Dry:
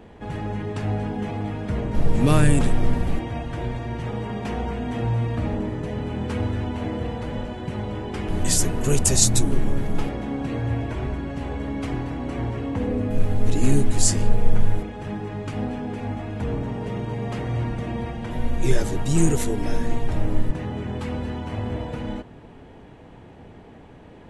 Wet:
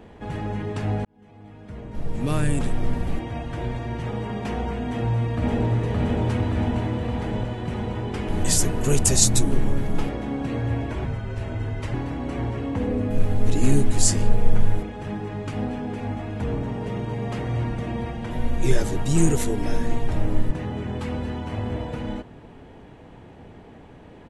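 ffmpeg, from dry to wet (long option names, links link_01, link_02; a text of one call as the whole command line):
ffmpeg -i in.wav -filter_complex "[0:a]asplit=2[link_01][link_02];[link_02]afade=type=in:start_time=4.85:duration=0.01,afade=type=out:start_time=5.72:duration=0.01,aecho=0:1:570|1140|1710|2280|2850|3420|3990|4560|5130|5700|6270|6840:0.891251|0.668438|0.501329|0.375996|0.281997|0.211498|0.158624|0.118968|0.0892257|0.0669193|0.0501895|0.0376421[link_03];[link_01][link_03]amix=inputs=2:normalize=0,asettb=1/sr,asplit=3[link_04][link_05][link_06];[link_04]atrim=end=11.054[link_07];[link_05]atrim=start=11.05:end=11.94,asetpts=PTS-STARTPTS,afade=type=in:duration=0.004:curve=qsin,afade=type=out:start_time=0.886:duration=0.004:curve=qsin,afreqshift=-170[link_08];[link_06]atrim=start=11.936[link_09];[link_07][link_08]acrossfade=duration=0.004:curve1=hsin:curve2=qsin[link_10];[link_10][link_09]acrossfade=duration=0.004:curve1=qsin:curve2=hsin,asplit=2[link_11][link_12];[link_11]atrim=end=1.05,asetpts=PTS-STARTPTS,afade=type=out:start_time=1.046:duration=0.004:curve=hsin[link_13];[link_12]atrim=start=1.05,asetpts=PTS-STARTPTS,afade=type=in:duration=2.71[link_14];[link_13][link_14]concat=n=2:v=0:a=1" out.wav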